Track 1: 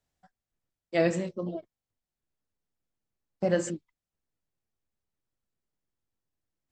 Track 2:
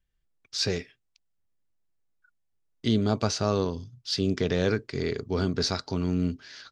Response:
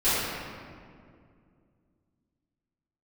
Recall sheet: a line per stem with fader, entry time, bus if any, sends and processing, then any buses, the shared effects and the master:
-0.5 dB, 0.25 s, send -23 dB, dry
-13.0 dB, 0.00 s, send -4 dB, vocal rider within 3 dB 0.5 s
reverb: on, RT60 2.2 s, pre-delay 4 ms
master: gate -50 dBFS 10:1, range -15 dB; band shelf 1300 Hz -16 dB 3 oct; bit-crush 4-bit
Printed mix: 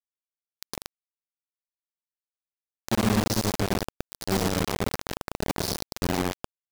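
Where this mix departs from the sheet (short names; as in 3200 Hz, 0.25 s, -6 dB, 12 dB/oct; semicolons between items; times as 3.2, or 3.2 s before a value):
stem 1 -0.5 dB -> -7.5 dB; stem 2: missing vocal rider within 3 dB 0.5 s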